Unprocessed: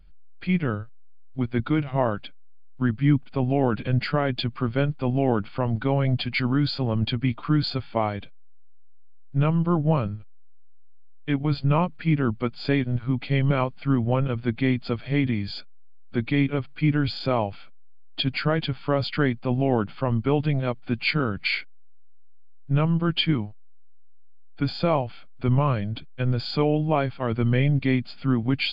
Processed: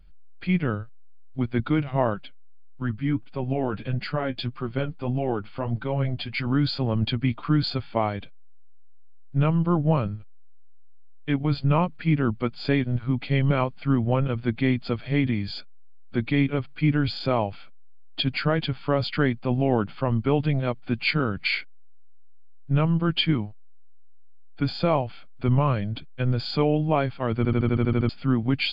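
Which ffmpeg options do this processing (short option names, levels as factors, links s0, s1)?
-filter_complex "[0:a]asettb=1/sr,asplit=3[s0][s1][s2];[s0]atrim=end=2.144[s3];[s1]atrim=start=2.14:end=6.47,asetpts=PTS-STARTPTS,afade=t=in:d=0.004:c=qsin,afade=t=out:st=4.326:d=0.004:c=qsin,flanger=delay=5.3:depth=6:regen=38:speed=1.6:shape=sinusoidal[s4];[s2]atrim=start=6.466[s5];[s3][s4]acrossfade=d=0.004:c1=hsin:c2=qsin[s6];[s6][s5]acrossfade=d=0.004:c1=qsin:c2=hsin,asplit=10[s7][s8][s9][s10][s11][s12][s13][s14][s15][s16];[s7]atrim=end=27.452[s17];[s8]atrim=start=27.368:end=27.452[s18];[s9]atrim=start=27.368:end=27.452[s19];[s10]atrim=start=27.368:end=27.452[s20];[s11]atrim=start=27.368:end=27.452[s21];[s12]atrim=start=27.368:end=27.452[s22];[s13]atrim=start=27.368:end=27.452[s23];[s14]atrim=start=27.368:end=27.452[s24];[s15]atrim=start=27.368:end=27.452[s25];[s16]atrim=start=28.088[s26];[s17][s18]acrossfade=d=0.004:c1=hsin:c2=hsin[s27];[s27][s19]acrossfade=d=0.004:c1=hsin:c2=hsin[s28];[s28][s20]acrossfade=d=0.004:c1=hsin:c2=hsin[s29];[s29][s21]acrossfade=d=0.004:c1=hsin:c2=hsin[s30];[s30][s22]acrossfade=d=0.004:c1=hsin:c2=hsin[s31];[s31][s23]acrossfade=d=0.004:c1=hsin:c2=hsin[s32];[s32][s24]acrossfade=d=0.004:c1=hsin:c2=hsin[s33];[s33][s25]acrossfade=d=0.004:c1=hsin:c2=hsin[s34];[s34][s26]acrossfade=d=0.004:c1=hsin:c2=hsin"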